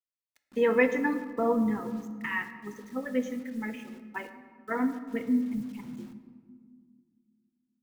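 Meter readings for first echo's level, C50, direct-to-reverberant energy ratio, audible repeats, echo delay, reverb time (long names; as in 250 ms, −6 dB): no echo audible, 10.0 dB, 8.0 dB, no echo audible, no echo audible, 1.8 s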